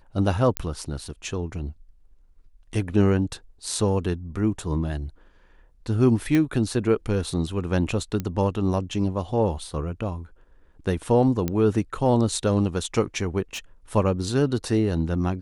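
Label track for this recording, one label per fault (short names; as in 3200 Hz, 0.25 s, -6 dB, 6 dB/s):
0.570000	0.570000	pop -8 dBFS
6.350000	6.350000	pop -11 dBFS
8.200000	8.200000	pop -15 dBFS
11.480000	11.480000	pop -12 dBFS
13.530000	13.590000	clipped -29 dBFS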